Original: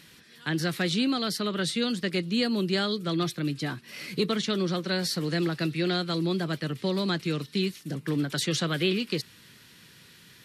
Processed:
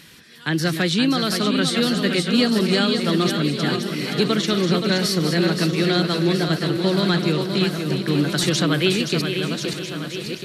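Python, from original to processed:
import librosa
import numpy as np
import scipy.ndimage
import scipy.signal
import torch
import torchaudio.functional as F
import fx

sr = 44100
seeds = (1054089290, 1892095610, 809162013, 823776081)

p1 = fx.reverse_delay_fb(x, sr, ms=649, feedback_pct=59, wet_db=-8)
p2 = p1 + fx.echo_feedback(p1, sr, ms=523, feedback_pct=32, wet_db=-7.0, dry=0)
y = p2 * 10.0 ** (6.5 / 20.0)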